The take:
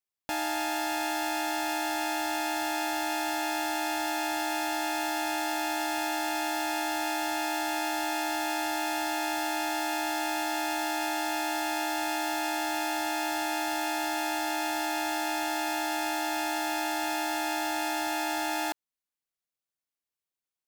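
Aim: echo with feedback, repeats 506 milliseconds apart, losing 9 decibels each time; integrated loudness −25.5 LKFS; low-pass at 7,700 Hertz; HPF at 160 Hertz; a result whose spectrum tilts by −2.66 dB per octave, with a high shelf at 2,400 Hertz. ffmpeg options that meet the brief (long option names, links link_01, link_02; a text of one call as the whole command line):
ffmpeg -i in.wav -af "highpass=160,lowpass=7700,highshelf=frequency=2400:gain=6,aecho=1:1:506|1012|1518|2024:0.355|0.124|0.0435|0.0152,volume=3dB" out.wav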